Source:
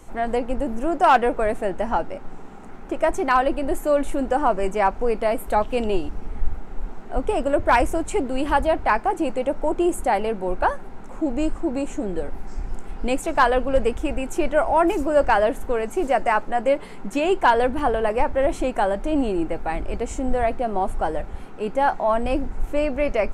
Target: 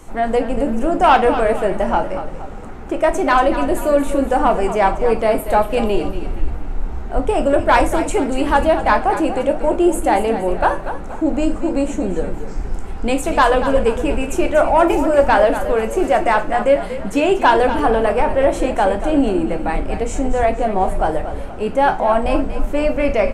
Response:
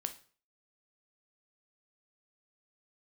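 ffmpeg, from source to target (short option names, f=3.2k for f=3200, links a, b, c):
-filter_complex "[0:a]acontrast=79,asplit=6[a][b][c][d][e][f];[b]adelay=236,afreqshift=-36,volume=-11dB[g];[c]adelay=472,afreqshift=-72,volume=-18.1dB[h];[d]adelay=708,afreqshift=-108,volume=-25.3dB[i];[e]adelay=944,afreqshift=-144,volume=-32.4dB[j];[f]adelay=1180,afreqshift=-180,volume=-39.5dB[k];[a][g][h][i][j][k]amix=inputs=6:normalize=0[l];[1:a]atrim=start_sample=2205,asetrate=52920,aresample=44100[m];[l][m]afir=irnorm=-1:irlink=0,volume=1dB"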